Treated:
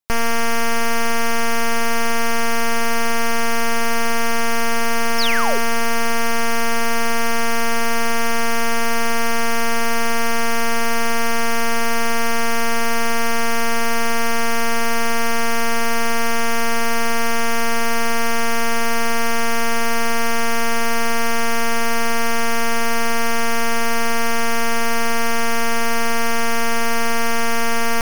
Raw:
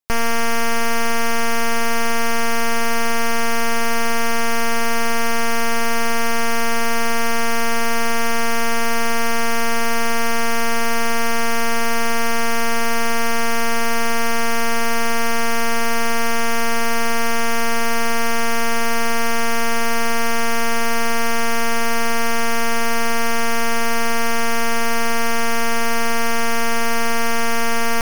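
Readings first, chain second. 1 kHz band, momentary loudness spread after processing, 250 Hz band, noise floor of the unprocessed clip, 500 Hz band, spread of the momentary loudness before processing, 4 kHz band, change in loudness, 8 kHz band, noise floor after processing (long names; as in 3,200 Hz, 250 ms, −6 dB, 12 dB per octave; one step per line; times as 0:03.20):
0.0 dB, 0 LU, 0.0 dB, −15 dBFS, 0.0 dB, 0 LU, +0.5 dB, 0.0 dB, 0.0 dB, −15 dBFS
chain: sound drawn into the spectrogram fall, 0:05.18–0:05.58, 390–5,700 Hz −22 dBFS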